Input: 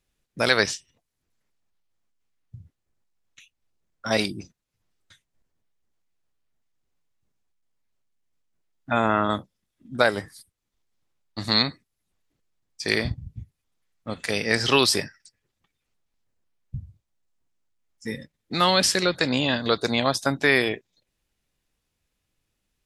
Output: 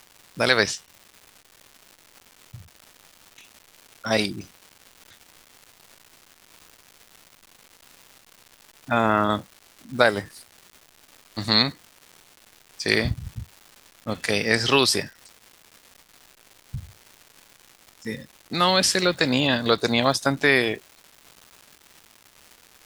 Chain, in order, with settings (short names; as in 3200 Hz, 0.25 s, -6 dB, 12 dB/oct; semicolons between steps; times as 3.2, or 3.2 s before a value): in parallel at +1 dB: vocal rider 0.5 s; on the sum: crackle 460/s -32 dBFS; gain -4.5 dB